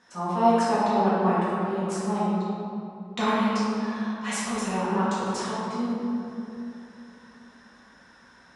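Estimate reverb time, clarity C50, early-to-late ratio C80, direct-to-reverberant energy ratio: 2.9 s, -3.5 dB, -1.5 dB, -10.5 dB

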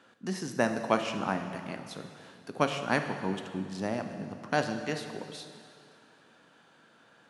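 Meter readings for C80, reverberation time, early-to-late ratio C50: 8.5 dB, 2.3 s, 7.5 dB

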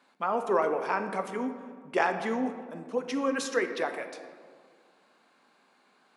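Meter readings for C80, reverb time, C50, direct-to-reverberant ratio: 10.0 dB, 1.8 s, 8.5 dB, 6.5 dB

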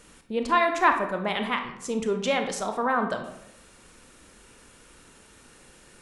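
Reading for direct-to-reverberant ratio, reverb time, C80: 5.0 dB, 0.85 s, 11.0 dB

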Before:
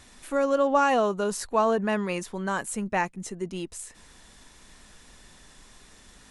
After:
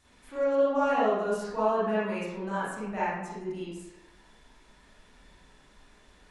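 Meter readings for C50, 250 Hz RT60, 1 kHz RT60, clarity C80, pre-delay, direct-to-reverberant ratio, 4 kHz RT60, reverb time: -3.0 dB, 0.85 s, 1.0 s, 1.5 dB, 33 ms, -11.0 dB, 0.60 s, 0.95 s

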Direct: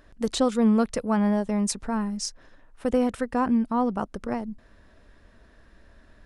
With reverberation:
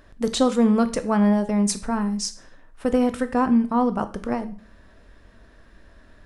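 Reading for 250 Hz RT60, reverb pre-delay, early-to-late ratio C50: 0.45 s, 7 ms, 15.0 dB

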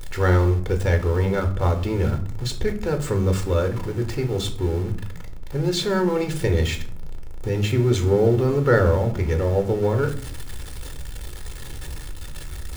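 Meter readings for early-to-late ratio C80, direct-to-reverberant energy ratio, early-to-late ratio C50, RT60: 16.5 dB, 5.0 dB, 12.5 dB, 0.55 s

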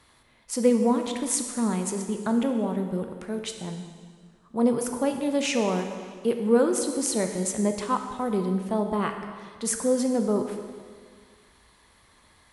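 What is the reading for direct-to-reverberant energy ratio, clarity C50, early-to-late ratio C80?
5.0 dB, 6.5 dB, 8.0 dB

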